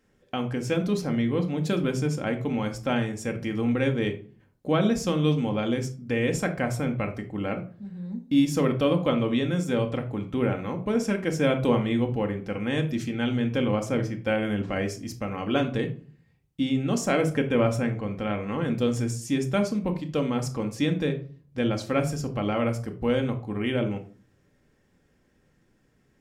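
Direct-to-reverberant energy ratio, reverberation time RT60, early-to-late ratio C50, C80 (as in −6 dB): 4.0 dB, 0.40 s, 12.5 dB, 17.5 dB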